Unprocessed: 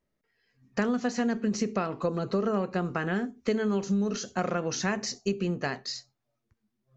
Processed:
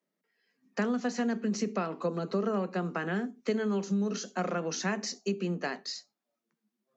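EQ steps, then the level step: steep high-pass 160 Hz 96 dB/octave; -2.5 dB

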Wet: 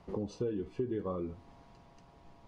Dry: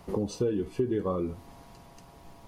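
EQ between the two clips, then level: distance through air 100 m; -6.5 dB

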